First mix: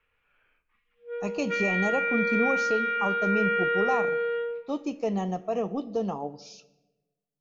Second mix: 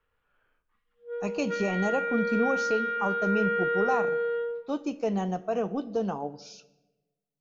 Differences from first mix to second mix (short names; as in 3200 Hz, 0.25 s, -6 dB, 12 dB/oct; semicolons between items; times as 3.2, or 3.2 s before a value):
speech: remove Butterworth band-stop 1500 Hz, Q 5.8; background: add bell 2400 Hz -14 dB 0.57 oct